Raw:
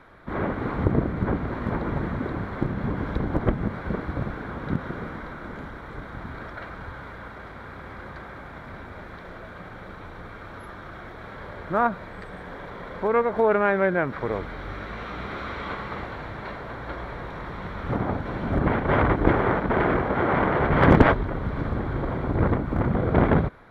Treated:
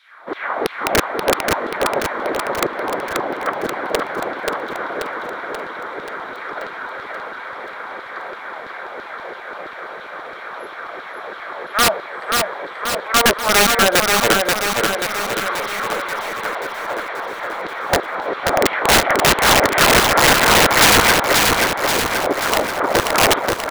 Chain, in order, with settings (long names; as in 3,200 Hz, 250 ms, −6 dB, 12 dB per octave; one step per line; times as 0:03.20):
dynamic equaliser 640 Hz, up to +6 dB, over −36 dBFS, Q 1.6
auto-filter high-pass saw down 3 Hz 350–3,900 Hz
wrap-around overflow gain 13 dB
repeating echo 533 ms, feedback 59%, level −3.5 dB
level +6.5 dB